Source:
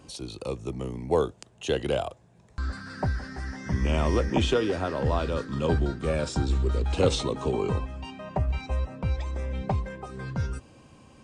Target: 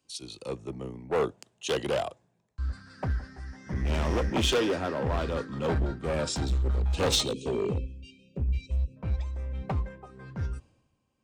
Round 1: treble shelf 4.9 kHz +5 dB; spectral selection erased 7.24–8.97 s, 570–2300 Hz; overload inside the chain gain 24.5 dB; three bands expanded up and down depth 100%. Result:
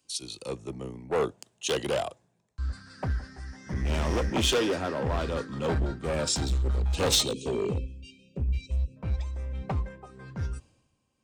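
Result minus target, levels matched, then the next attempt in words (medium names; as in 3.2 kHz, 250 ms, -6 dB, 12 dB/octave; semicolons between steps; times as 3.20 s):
8 kHz band +4.0 dB
treble shelf 4.9 kHz -2 dB; spectral selection erased 7.24–8.97 s, 570–2300 Hz; overload inside the chain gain 24.5 dB; three bands expanded up and down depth 100%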